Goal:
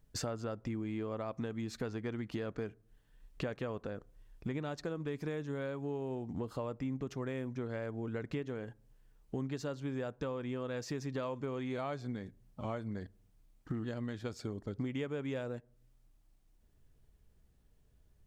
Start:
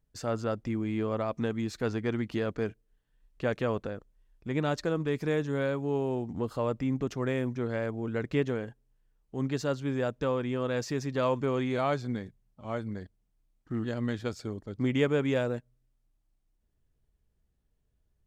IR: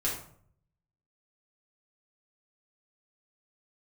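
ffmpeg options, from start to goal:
-filter_complex "[0:a]acompressor=threshold=0.00708:ratio=8,asplit=2[s0][s1];[1:a]atrim=start_sample=2205,lowpass=1800[s2];[s1][s2]afir=irnorm=-1:irlink=0,volume=0.0422[s3];[s0][s3]amix=inputs=2:normalize=0,volume=2.24"

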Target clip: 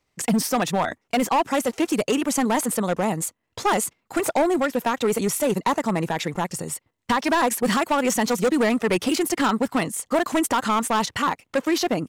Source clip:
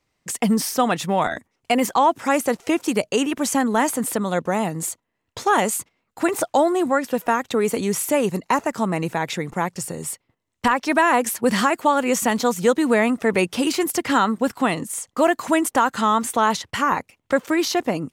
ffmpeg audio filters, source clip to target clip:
-af "atempo=1.5,volume=5.96,asoftclip=hard,volume=0.168"

